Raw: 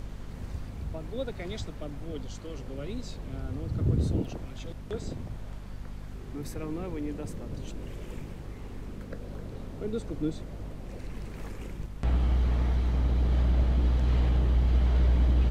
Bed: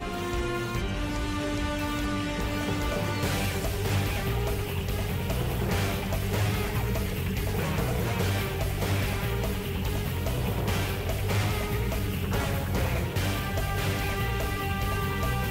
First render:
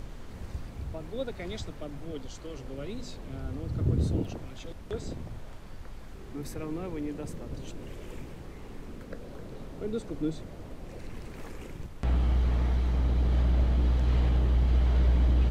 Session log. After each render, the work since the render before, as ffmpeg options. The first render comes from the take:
-af "bandreject=f=50:t=h:w=4,bandreject=f=100:t=h:w=4,bandreject=f=150:t=h:w=4,bandreject=f=200:t=h:w=4,bandreject=f=250:t=h:w=4"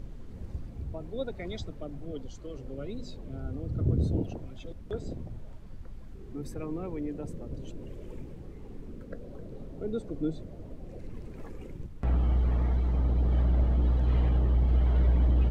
-af "afftdn=nr=11:nf=-44"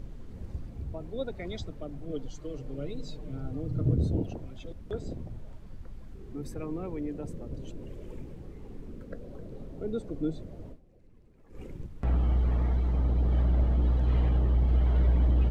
-filter_complex "[0:a]asettb=1/sr,asplit=3[s0][s1][s2];[s0]atrim=end=2.094[s3];[s1]atrim=start=2.09:end=3.94,asetpts=PTS-STARTPTS,afade=t=in:d=0.004:c=qsin,afade=t=out:st=1.846:d=0.004:c=qsin,aecho=1:1:6.6:0.65,atrim=end_sample=81585[s4];[s2]atrim=start=3.936[s5];[s3][s4]acrossfade=d=0.004:c1=hsin:c2=qsin[s6];[s6][s5]acrossfade=d=0.004:c1=qsin:c2=hsin,asplit=3[s7][s8][s9];[s7]atrim=end=10.83,asetpts=PTS-STARTPTS,afade=t=out:st=10.69:d=0.14:c=qua:silence=0.133352[s10];[s8]atrim=start=10.83:end=11.45,asetpts=PTS-STARTPTS,volume=0.133[s11];[s9]atrim=start=11.45,asetpts=PTS-STARTPTS,afade=t=in:d=0.14:c=qua:silence=0.133352[s12];[s10][s11][s12]concat=n=3:v=0:a=1"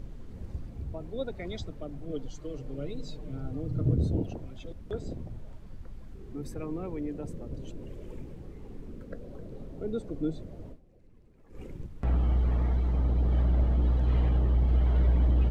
-af anull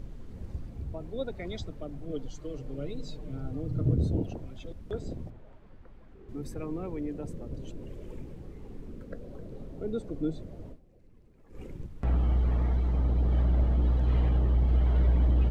-filter_complex "[0:a]asettb=1/sr,asplit=3[s0][s1][s2];[s0]atrim=end=5.304[s3];[s1]atrim=start=5.3:end=6.29,asetpts=PTS-STARTPTS,afade=t=in:d=0.004:c=qsin,afade=t=out:st=0.986:d=0.004:c=qsin,bass=f=250:g=-9,treble=f=4000:g=-15[s4];[s2]atrim=start=6.286[s5];[s3][s4]acrossfade=d=0.004:c1=hsin:c2=qsin[s6];[s6][s5]acrossfade=d=0.004:c1=qsin:c2=hsin"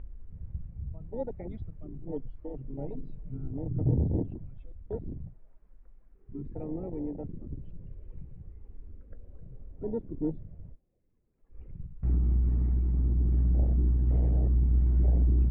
-af "afwtdn=0.0355,lowpass=f=2500:w=0.5412,lowpass=f=2500:w=1.3066"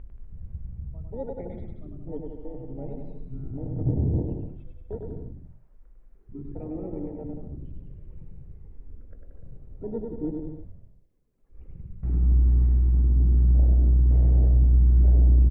-af "aecho=1:1:100|180|244|295.2|336.2:0.631|0.398|0.251|0.158|0.1"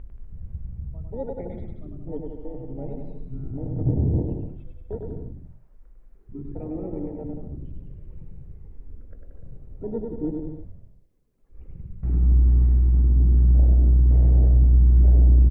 -af "volume=1.33"

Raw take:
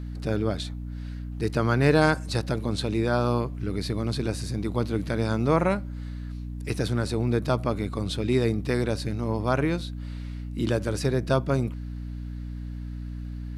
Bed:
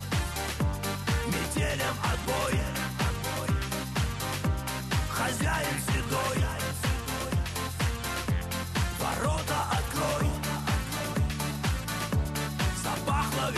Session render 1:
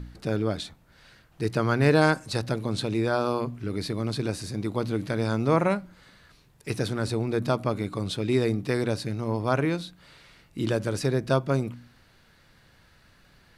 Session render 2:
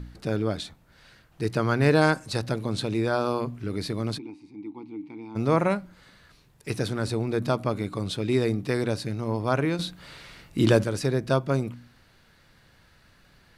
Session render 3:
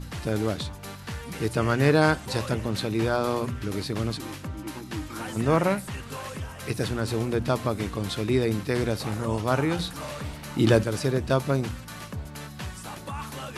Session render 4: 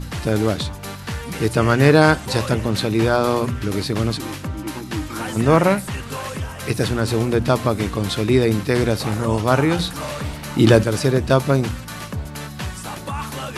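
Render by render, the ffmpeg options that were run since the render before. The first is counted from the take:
-af "bandreject=f=60:t=h:w=4,bandreject=f=120:t=h:w=4,bandreject=f=180:t=h:w=4,bandreject=f=240:t=h:w=4,bandreject=f=300:t=h:w=4"
-filter_complex "[0:a]asplit=3[s0][s1][s2];[s0]afade=t=out:st=4.17:d=0.02[s3];[s1]asplit=3[s4][s5][s6];[s4]bandpass=f=300:t=q:w=8,volume=1[s7];[s5]bandpass=f=870:t=q:w=8,volume=0.501[s8];[s6]bandpass=f=2240:t=q:w=8,volume=0.355[s9];[s7][s8][s9]amix=inputs=3:normalize=0,afade=t=in:st=4.17:d=0.02,afade=t=out:st=5.35:d=0.02[s10];[s2]afade=t=in:st=5.35:d=0.02[s11];[s3][s10][s11]amix=inputs=3:normalize=0,asettb=1/sr,asplit=3[s12][s13][s14];[s12]atrim=end=9.794[s15];[s13]atrim=start=9.79:end=10.84,asetpts=PTS-STARTPTS,afade=t=in:d=0.004:c=qsin,afade=t=out:st=1.046:d=0.004:c=qsin,acontrast=87[s16];[s14]atrim=start=10.836[s17];[s15][s16]acrossfade=d=0.004:c1=hsin:c2=qsin[s18];[s18][s17]acrossfade=d=0.004:c1=qsin:c2=hsin"
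-filter_complex "[1:a]volume=0.422[s0];[0:a][s0]amix=inputs=2:normalize=0"
-af "volume=2.37,alimiter=limit=0.891:level=0:latency=1"

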